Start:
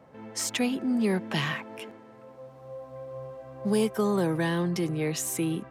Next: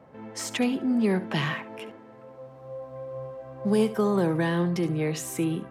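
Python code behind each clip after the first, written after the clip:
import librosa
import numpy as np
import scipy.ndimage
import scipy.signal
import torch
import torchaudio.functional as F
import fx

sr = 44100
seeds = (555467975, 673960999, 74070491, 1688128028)

y = fx.high_shelf(x, sr, hz=3800.0, db=-7.5)
y = y + 10.0 ** (-15.0 / 20.0) * np.pad(y, (int(70 * sr / 1000.0), 0))[:len(y)]
y = y * librosa.db_to_amplitude(2.0)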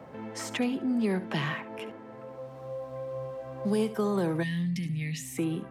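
y = fx.spec_box(x, sr, start_s=4.43, length_s=0.95, low_hz=290.0, high_hz=1700.0, gain_db=-23)
y = fx.band_squash(y, sr, depth_pct=40)
y = y * librosa.db_to_amplitude(-3.5)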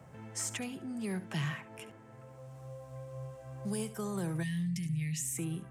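y = fx.graphic_eq(x, sr, hz=(125, 250, 500, 1000, 2000, 4000, 8000), db=(4, -11, -9, -7, -4, -8, 8))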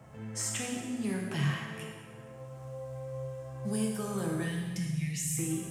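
y = fx.rev_plate(x, sr, seeds[0], rt60_s=1.6, hf_ratio=0.9, predelay_ms=0, drr_db=-1.0)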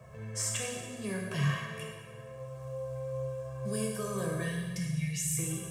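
y = x + 0.87 * np.pad(x, (int(1.8 * sr / 1000.0), 0))[:len(x)]
y = y * librosa.db_to_amplitude(-1.5)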